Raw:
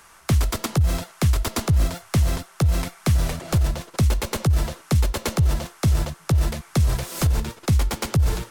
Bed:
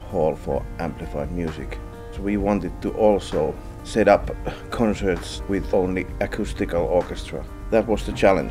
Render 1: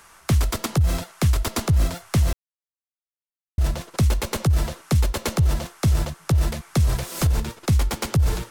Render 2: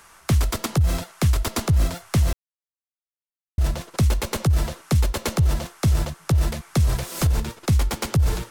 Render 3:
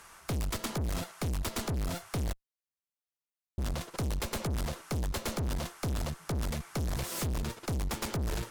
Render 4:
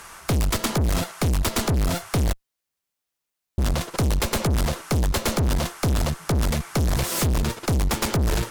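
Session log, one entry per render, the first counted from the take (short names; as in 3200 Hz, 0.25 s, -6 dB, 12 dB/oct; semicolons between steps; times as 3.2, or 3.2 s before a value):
2.33–3.58 mute
nothing audible
tube stage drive 30 dB, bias 0.6
gain +11 dB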